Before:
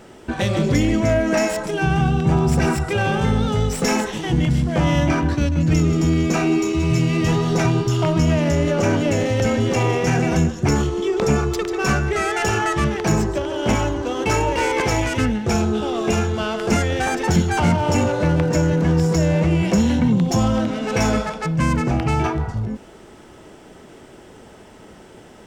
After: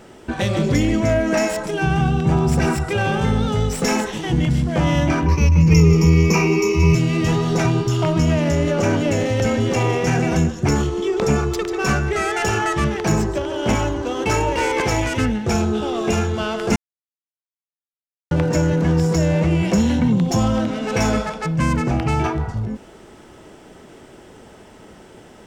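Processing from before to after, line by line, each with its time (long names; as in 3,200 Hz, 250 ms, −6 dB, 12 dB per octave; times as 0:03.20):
0:05.26–0:06.95: EQ curve with evenly spaced ripples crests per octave 0.81, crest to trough 16 dB
0:16.76–0:18.31: silence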